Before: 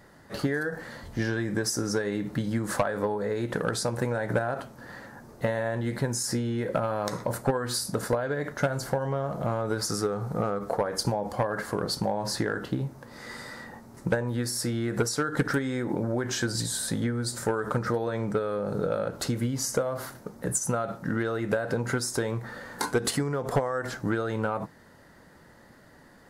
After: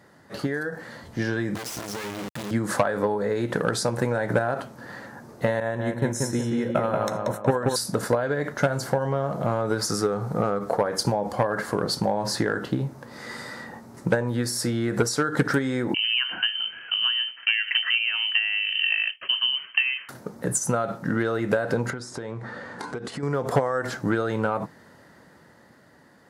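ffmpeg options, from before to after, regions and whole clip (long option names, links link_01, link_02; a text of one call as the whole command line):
ffmpeg -i in.wav -filter_complex "[0:a]asettb=1/sr,asplit=3[link_01][link_02][link_03];[link_01]atrim=end=1.554[link_04];[link_02]atrim=start=1.55:end=2.51,asetpts=PTS-STARTPTS,afade=type=in:duration=0.004:curve=qsin,afade=type=out:start_time=0.956:duration=0.004:curve=qsin,acompressor=threshold=-28dB:ratio=12:attack=3.2:release=140:knee=1:detection=peak,acrusher=bits=3:dc=4:mix=0:aa=0.000001[link_05];[link_03]atrim=start=2.506[link_06];[link_04][link_05]acrossfade=duration=0.004:curve1=hsin:curve2=qsin[link_07];[link_07][link_06]acrossfade=duration=0.004:curve1=qsin:curve2=hsin,asettb=1/sr,asplit=3[link_08][link_09][link_10];[link_08]atrim=end=5.604[link_11];[link_09]atrim=start=5.6:end=7.76,asetpts=PTS-STARTPTS,afade=type=in:duration=0.004:curve=qsin,afade=type=out:start_time=2.156:duration=0.004:curve=qsin,agate=range=-33dB:threshold=-27dB:ratio=3:release=100:detection=peak,asuperstop=centerf=4700:order=8:qfactor=4.9,asplit=2[link_12][link_13];[link_13]adelay=183,lowpass=frequency=2900:poles=1,volume=-3dB,asplit=2[link_14][link_15];[link_15]adelay=183,lowpass=frequency=2900:poles=1,volume=0.43,asplit=2[link_16][link_17];[link_17]adelay=183,lowpass=frequency=2900:poles=1,volume=0.43,asplit=2[link_18][link_19];[link_19]adelay=183,lowpass=frequency=2900:poles=1,volume=0.43,asplit=2[link_20][link_21];[link_21]adelay=183,lowpass=frequency=2900:poles=1,volume=0.43,asplit=2[link_22][link_23];[link_23]adelay=183,lowpass=frequency=2900:poles=1,volume=0.43[link_24];[link_12][link_14][link_16][link_18][link_20][link_22][link_24]amix=inputs=7:normalize=0,atrim=end_sample=95256[link_25];[link_10]atrim=start=7.756[link_26];[link_11][link_25]acrossfade=duration=0.004:curve1=hsin:curve2=qsin[link_27];[link_27][link_26]acrossfade=duration=0.004:curve1=qsin:curve2=hsin,asettb=1/sr,asplit=3[link_28][link_29][link_30];[link_28]atrim=end=15.944[link_31];[link_29]atrim=start=15.94:end=20.09,asetpts=PTS-STARTPTS,afade=type=in:duration=0.004:curve=qsin,afade=type=out:start_time=4.146:duration=0.004:curve=qsin,agate=range=-33dB:threshold=-31dB:ratio=3:release=100:detection=peak,lowpass=frequency=2700:width_type=q:width=0.5098,lowpass=frequency=2700:width_type=q:width=0.6013,lowpass=frequency=2700:width_type=q:width=0.9,lowpass=frequency=2700:width_type=q:width=2.563,afreqshift=-3200[link_32];[link_30]atrim=start=20.086[link_33];[link_31][link_32]acrossfade=duration=0.004:curve1=hsin:curve2=qsin[link_34];[link_34][link_33]acrossfade=duration=0.004:curve1=qsin:curve2=hsin,asettb=1/sr,asplit=3[link_35][link_36][link_37];[link_35]atrim=end=21.904[link_38];[link_36]atrim=start=21.9:end=23.23,asetpts=PTS-STARTPTS,afade=type=in:duration=0.004:curve=qsin,afade=type=out:start_time=1.326:duration=0.004:curve=qsin,lowpass=frequency=10000:width=0.5412,lowpass=frequency=10000:width=1.3066,acompressor=threshold=-32dB:ratio=12:attack=3.2:release=140:knee=1:detection=peak,highshelf=frequency=5700:gain=-11.5[link_39];[link_37]atrim=start=23.226[link_40];[link_38][link_39]acrossfade=duration=0.004:curve1=hsin:curve2=qsin[link_41];[link_41][link_40]acrossfade=duration=0.004:curve1=qsin:curve2=hsin,highpass=95,highshelf=frequency=11000:gain=-5,dynaudnorm=framelen=120:gausssize=21:maxgain=4dB" out.wav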